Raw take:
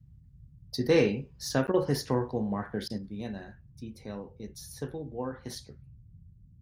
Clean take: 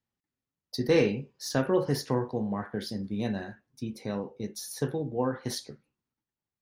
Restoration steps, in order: interpolate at 1.67, 9.4 ms; interpolate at 1.72/2.88, 18 ms; noise print and reduce 30 dB; gain 0 dB, from 2.98 s +6.5 dB

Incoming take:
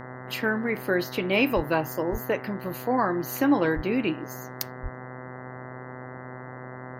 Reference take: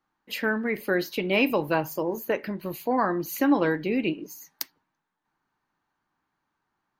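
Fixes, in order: de-hum 127.1 Hz, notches 16; de-plosive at 1.55/2.11/3.75/4.82; noise print and reduce 30 dB

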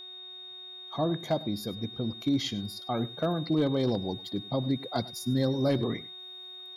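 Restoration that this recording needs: clip repair -18.5 dBFS; de-hum 367.8 Hz, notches 11; notch 3700 Hz, Q 30; inverse comb 0.101 s -19.5 dB

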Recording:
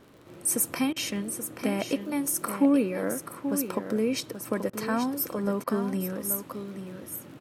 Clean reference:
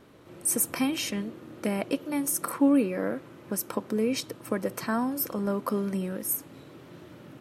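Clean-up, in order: de-click; interpolate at 0.93/4.7/5.64, 31 ms; inverse comb 0.831 s -9 dB

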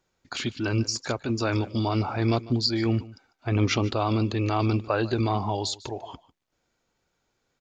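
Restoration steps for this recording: inverse comb 0.148 s -19.5 dB

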